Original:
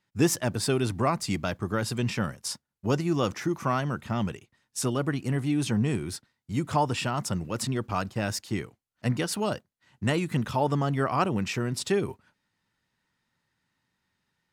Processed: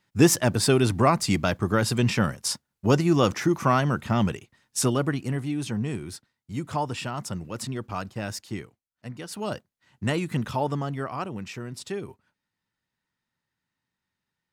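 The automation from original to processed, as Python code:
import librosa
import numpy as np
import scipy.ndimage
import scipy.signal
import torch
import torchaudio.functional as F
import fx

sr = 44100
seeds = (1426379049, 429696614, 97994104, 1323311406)

y = fx.gain(x, sr, db=fx.line((4.79, 5.5), (5.55, -3.0), (8.53, -3.0), (9.13, -12.0), (9.55, 0.0), (10.53, 0.0), (11.22, -7.0)))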